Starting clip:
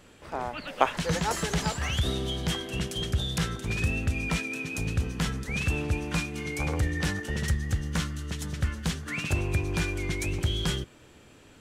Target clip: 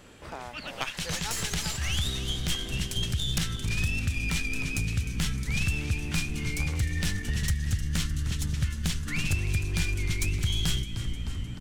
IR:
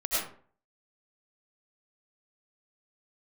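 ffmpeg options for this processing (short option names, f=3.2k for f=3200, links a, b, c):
-filter_complex "[0:a]asplit=8[a][b][c][d][e][f][g][h];[b]adelay=306,afreqshift=-56,volume=-12dB[i];[c]adelay=612,afreqshift=-112,volume=-16.3dB[j];[d]adelay=918,afreqshift=-168,volume=-20.6dB[k];[e]adelay=1224,afreqshift=-224,volume=-24.9dB[l];[f]adelay=1530,afreqshift=-280,volume=-29.2dB[m];[g]adelay=1836,afreqshift=-336,volume=-33.5dB[n];[h]adelay=2142,afreqshift=-392,volume=-37.8dB[o];[a][i][j][k][l][m][n][o]amix=inputs=8:normalize=0,acrossover=split=2000[p][q];[p]acompressor=threshold=-41dB:ratio=4[r];[q]aeval=exprs='0.126*(cos(1*acos(clip(val(0)/0.126,-1,1)))-cos(1*PI/2))+0.0282*(cos(4*acos(clip(val(0)/0.126,-1,1)))-cos(4*PI/2))':c=same[s];[r][s]amix=inputs=2:normalize=0,asubboost=boost=4:cutoff=230,volume=2.5dB"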